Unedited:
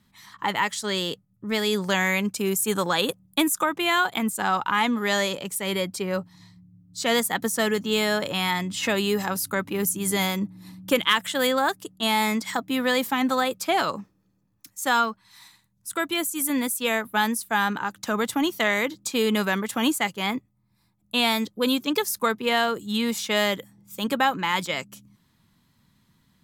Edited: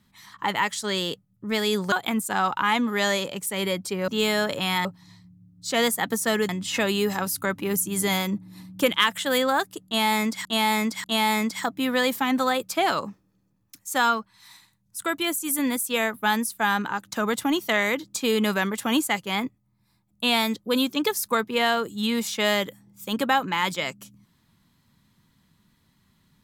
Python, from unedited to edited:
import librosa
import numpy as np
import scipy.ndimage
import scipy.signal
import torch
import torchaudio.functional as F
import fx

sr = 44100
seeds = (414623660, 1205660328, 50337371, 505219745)

y = fx.edit(x, sr, fx.cut(start_s=1.92, length_s=2.09),
    fx.move(start_s=7.81, length_s=0.77, to_s=6.17),
    fx.repeat(start_s=11.95, length_s=0.59, count=3), tone=tone)